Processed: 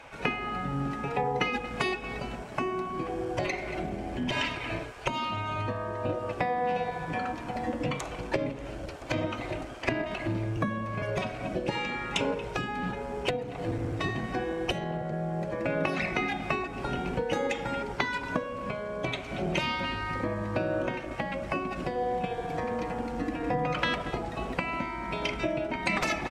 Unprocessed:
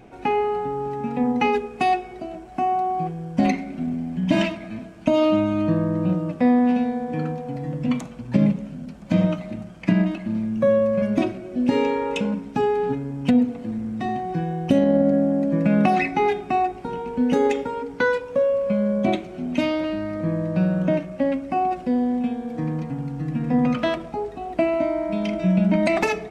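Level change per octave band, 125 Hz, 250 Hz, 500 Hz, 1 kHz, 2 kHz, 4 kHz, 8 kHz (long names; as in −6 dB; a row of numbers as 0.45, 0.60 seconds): −8.0 dB, −13.5 dB, −9.0 dB, −6.5 dB, −1.0 dB, +1.0 dB, can't be measured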